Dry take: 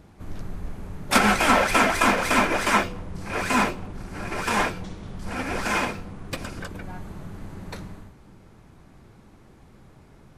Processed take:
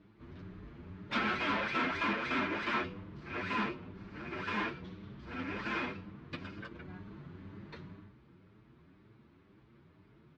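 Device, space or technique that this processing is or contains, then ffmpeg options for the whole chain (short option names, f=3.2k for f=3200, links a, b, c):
barber-pole flanger into a guitar amplifier: -filter_complex "[0:a]asplit=2[a][b];[b]adelay=7.5,afreqshift=2[c];[a][c]amix=inputs=2:normalize=1,asoftclip=type=tanh:threshold=-19.5dB,highpass=85,equalizer=f=330:t=q:w=4:g=4,equalizer=f=530:t=q:w=4:g=-5,equalizer=f=760:t=q:w=4:g=-10,lowpass=f=4k:w=0.5412,lowpass=f=4k:w=1.3066,volume=-6dB"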